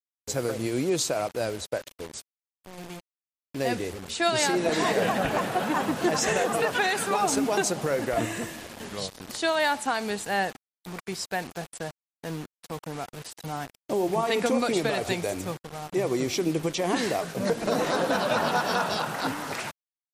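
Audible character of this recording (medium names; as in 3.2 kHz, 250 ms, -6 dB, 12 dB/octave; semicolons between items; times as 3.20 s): a quantiser's noise floor 6-bit, dither none; MP3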